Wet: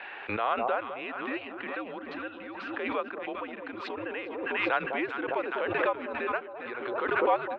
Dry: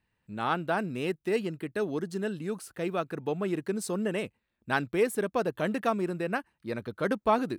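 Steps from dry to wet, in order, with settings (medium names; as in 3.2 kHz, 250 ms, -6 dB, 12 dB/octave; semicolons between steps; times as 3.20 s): mistuned SSB -110 Hz 570–3300 Hz; echo whose repeats swap between lows and highs 202 ms, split 940 Hz, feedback 71%, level -10 dB; swell ahead of each attack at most 29 dB/s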